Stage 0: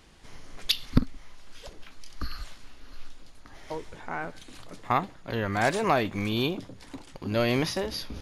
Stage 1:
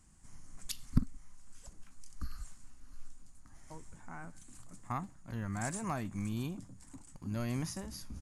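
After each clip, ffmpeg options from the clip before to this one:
-af "firequalizer=gain_entry='entry(200,0);entry(430,-16);entry(730,-10);entry(1100,-7);entry(2200,-12);entry(3600,-17);entry(7800,10);entry(13000,-6)':delay=0.05:min_phase=1,volume=-5.5dB"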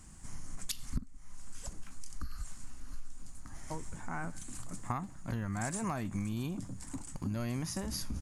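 -af "acompressor=threshold=-42dB:ratio=8,volume=10dB"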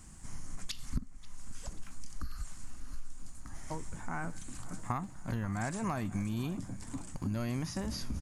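-filter_complex "[0:a]acrossover=split=6000[a][b];[b]acompressor=threshold=-52dB:ratio=4:attack=1:release=60[c];[a][c]amix=inputs=2:normalize=0,asplit=2[d][e];[e]adelay=536,lowpass=f=4.7k:p=1,volume=-18dB,asplit=2[f][g];[g]adelay=536,lowpass=f=4.7k:p=1,volume=0.53,asplit=2[h][i];[i]adelay=536,lowpass=f=4.7k:p=1,volume=0.53,asplit=2[j][k];[k]adelay=536,lowpass=f=4.7k:p=1,volume=0.53[l];[d][f][h][j][l]amix=inputs=5:normalize=0,volume=1dB"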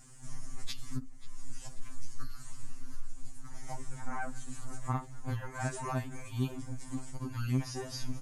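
-af "afftfilt=real='re*2.45*eq(mod(b,6),0)':imag='im*2.45*eq(mod(b,6),0)':win_size=2048:overlap=0.75,volume=2dB"

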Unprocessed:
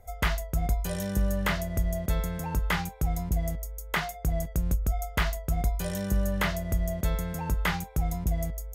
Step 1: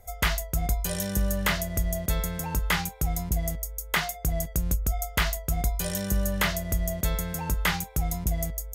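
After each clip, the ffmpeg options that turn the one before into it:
-af "highshelf=f=2.6k:g=8.5"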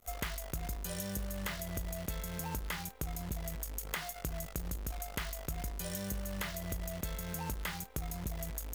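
-af "acompressor=threshold=-33dB:ratio=12,acrusher=bits=8:dc=4:mix=0:aa=0.000001,volume=-2dB"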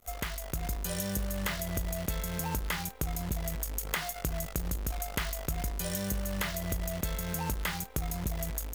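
-af "dynaudnorm=f=360:g=3:m=3.5dB,volume=2dB"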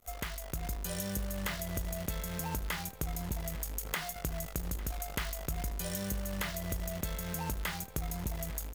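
-af "aecho=1:1:850:0.119,volume=-3dB"

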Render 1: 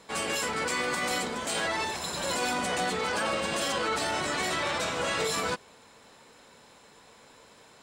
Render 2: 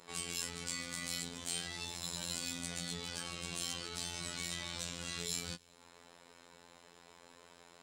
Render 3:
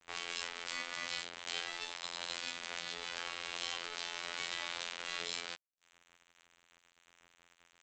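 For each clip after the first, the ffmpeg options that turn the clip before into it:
-filter_complex "[0:a]acrossover=split=210|3000[a][b][c];[b]acompressor=threshold=-46dB:ratio=6[d];[a][d][c]amix=inputs=3:normalize=0,afftfilt=real='hypot(re,im)*cos(PI*b)':imag='0':win_size=2048:overlap=0.75,volume=-1.5dB"
-filter_complex "[0:a]acrossover=split=350 3700:gain=0.0794 1 0.224[a][b][c];[a][b][c]amix=inputs=3:normalize=0,aresample=16000,aeval=exprs='sgn(val(0))*max(abs(val(0))-0.00282,0)':c=same,aresample=44100,volume=8.5dB"

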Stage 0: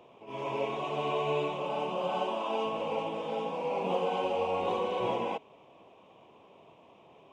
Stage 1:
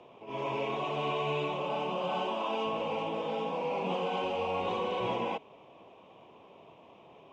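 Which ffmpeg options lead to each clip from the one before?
-filter_complex "[0:a]lowpass=6.2k,acrossover=split=260|1100[a][b][c];[b]alimiter=level_in=6.5dB:limit=-24dB:level=0:latency=1,volume=-6.5dB[d];[a][d][c]amix=inputs=3:normalize=0,volume=2dB"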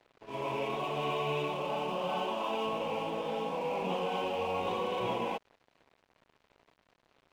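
-af "aeval=exprs='sgn(val(0))*max(abs(val(0))-0.00282,0)':c=same"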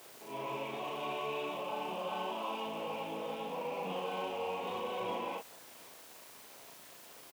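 -filter_complex "[0:a]aeval=exprs='val(0)+0.5*0.0133*sgn(val(0))':c=same,highpass=f=210:p=1,asplit=2[a][b];[b]adelay=37,volume=-3dB[c];[a][c]amix=inputs=2:normalize=0,volume=-7.5dB"

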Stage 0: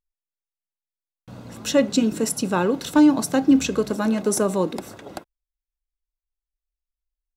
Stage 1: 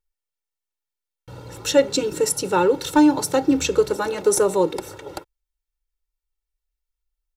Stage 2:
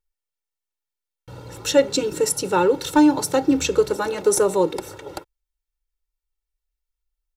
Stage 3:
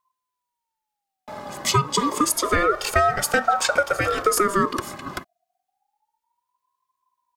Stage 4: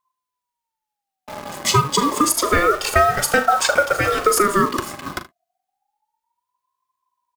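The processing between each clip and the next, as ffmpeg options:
-af "aecho=1:1:2.2:0.99"
-af anull
-af "acompressor=threshold=-19dB:ratio=6,aeval=exprs='val(0)*sin(2*PI*860*n/s+860*0.2/0.29*sin(2*PI*0.29*n/s))':c=same,volume=6dB"
-filter_complex "[0:a]asplit=2[a][b];[b]acrusher=bits=4:mix=0:aa=0.000001,volume=-4dB[c];[a][c]amix=inputs=2:normalize=0,aecho=1:1:40|76:0.251|0.126,volume=-1dB"

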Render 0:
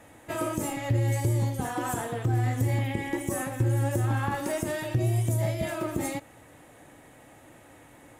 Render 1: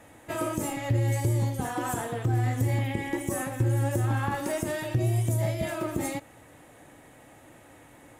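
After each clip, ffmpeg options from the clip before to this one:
-af anull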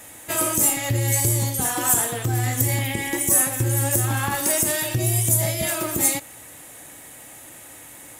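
-af "crystalizer=i=6:c=0,volume=2dB"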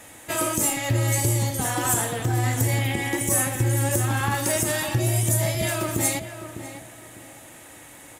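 -filter_complex "[0:a]highshelf=f=10k:g=-10.5,asplit=2[a][b];[b]adelay=602,lowpass=f=2.1k:p=1,volume=-10dB,asplit=2[c][d];[d]adelay=602,lowpass=f=2.1k:p=1,volume=0.29,asplit=2[e][f];[f]adelay=602,lowpass=f=2.1k:p=1,volume=0.29[g];[a][c][e][g]amix=inputs=4:normalize=0"

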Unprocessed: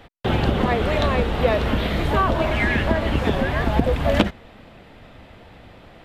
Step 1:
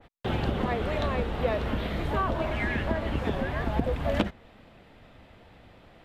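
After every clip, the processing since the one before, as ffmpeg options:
-af "adynamicequalizer=threshold=0.0224:dfrequency=2200:dqfactor=0.7:tfrequency=2200:tqfactor=0.7:attack=5:release=100:ratio=0.375:range=1.5:mode=cutabove:tftype=highshelf,volume=-8dB"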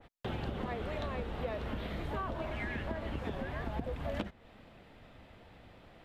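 -af "acompressor=threshold=-36dB:ratio=2,volume=-3dB"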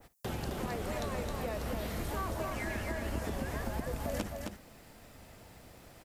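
-filter_complex "[0:a]aexciter=amount=10.3:drive=1.5:freq=5k,asplit=2[a][b];[b]aecho=0:1:57|265:0.119|0.596[c];[a][c]amix=inputs=2:normalize=0"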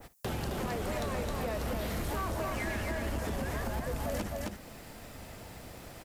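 -filter_complex "[0:a]asplit=2[a][b];[b]acompressor=threshold=-43dB:ratio=6,volume=2dB[c];[a][c]amix=inputs=2:normalize=0,asoftclip=type=hard:threshold=-29dB"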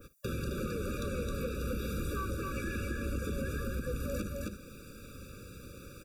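-af "afftfilt=real='re*eq(mod(floor(b*sr/1024/560),2),0)':imag='im*eq(mod(floor(b*sr/1024/560),2),0)':win_size=1024:overlap=0.75"

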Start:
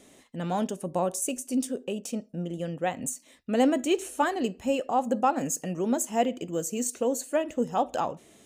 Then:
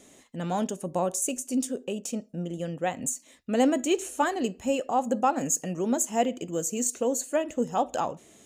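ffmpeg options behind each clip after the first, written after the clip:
-af "equalizer=f=6.9k:t=o:w=0.27:g=6.5"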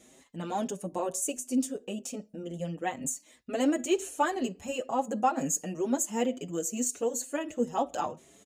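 -filter_complex "[0:a]asplit=2[a][b];[b]adelay=6.1,afreqshift=2.1[c];[a][c]amix=inputs=2:normalize=1"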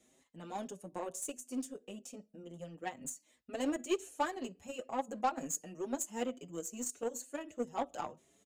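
-filter_complex "[0:a]acrossover=split=200|6500[a][b][c];[a]aeval=exprs='0.01*(abs(mod(val(0)/0.01+3,4)-2)-1)':c=same[d];[d][b][c]amix=inputs=3:normalize=0,aeval=exprs='0.211*(cos(1*acos(clip(val(0)/0.211,-1,1)))-cos(1*PI/2))+0.00335*(cos(4*acos(clip(val(0)/0.211,-1,1)))-cos(4*PI/2))+0.0133*(cos(7*acos(clip(val(0)/0.211,-1,1)))-cos(7*PI/2))':c=same,volume=-6.5dB"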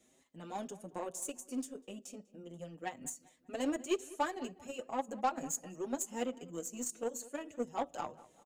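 -filter_complex "[0:a]asplit=2[a][b];[b]adelay=197,lowpass=f=2.3k:p=1,volume=-19dB,asplit=2[c][d];[d]adelay=197,lowpass=f=2.3k:p=1,volume=0.45,asplit=2[e][f];[f]adelay=197,lowpass=f=2.3k:p=1,volume=0.45,asplit=2[g][h];[h]adelay=197,lowpass=f=2.3k:p=1,volume=0.45[i];[a][c][e][g][i]amix=inputs=5:normalize=0"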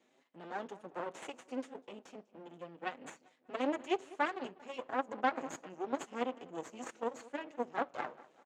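-af "aeval=exprs='max(val(0),0)':c=same,highpass=270,lowpass=3.3k,volume=6dB"

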